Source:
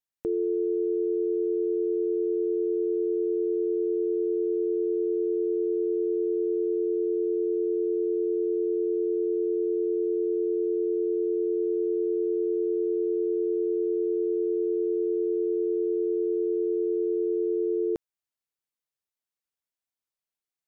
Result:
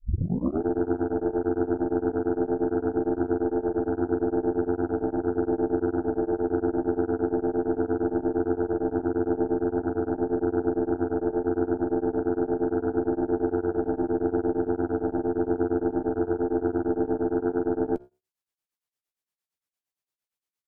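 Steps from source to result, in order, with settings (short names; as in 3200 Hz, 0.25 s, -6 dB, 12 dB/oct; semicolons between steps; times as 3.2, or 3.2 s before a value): tape start at the beginning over 0.62 s; harmoniser -5 st -3 dB; added harmonics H 4 -15 dB, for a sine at -15.5 dBFS; flange 0.2 Hz, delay 9.8 ms, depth 6.9 ms, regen -69%; beating tremolo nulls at 8.7 Hz; gain +5.5 dB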